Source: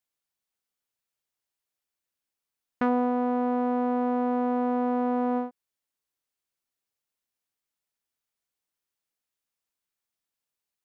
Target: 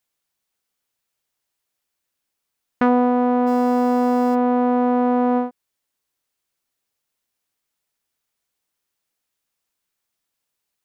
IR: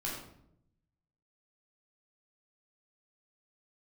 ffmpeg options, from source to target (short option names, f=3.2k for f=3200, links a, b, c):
-filter_complex "[0:a]asplit=3[a][b][c];[a]afade=t=out:st=3.46:d=0.02[d];[b]acrusher=bits=7:mix=0:aa=0.5,afade=t=in:st=3.46:d=0.02,afade=t=out:st=4.34:d=0.02[e];[c]afade=t=in:st=4.34:d=0.02[f];[d][e][f]amix=inputs=3:normalize=0,volume=8dB"